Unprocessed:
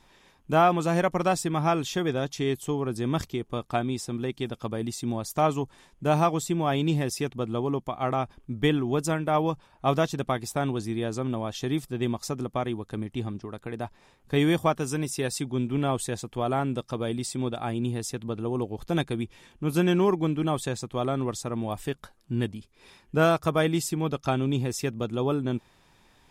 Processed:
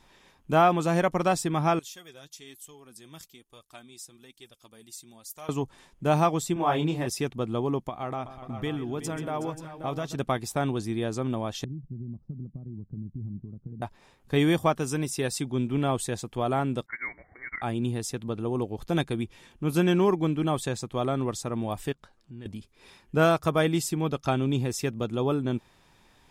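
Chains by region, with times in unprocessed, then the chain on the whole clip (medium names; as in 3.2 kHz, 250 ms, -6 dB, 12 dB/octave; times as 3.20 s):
1.79–5.49 s: pre-emphasis filter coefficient 0.9 + flange 1.1 Hz, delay 1.6 ms, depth 5 ms, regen +41%
6.54–7.07 s: peaking EQ 970 Hz +7.5 dB 1.9 oct + detune thickener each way 37 cents
7.89–10.15 s: compression 2:1, threshold -33 dBFS + multi-tap echo 133/370/532 ms -13.5/-13/-11 dB
11.64–13.82 s: compression 5:1, threshold -32 dBFS + resonant low-pass 170 Hz, resonance Q 1.6
16.86–17.62 s: steep high-pass 500 Hz 72 dB/octave + frequency inversion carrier 2.7 kHz
21.92–22.46 s: low-pass 7.1 kHz + compression 2:1, threshold -52 dBFS
whole clip: none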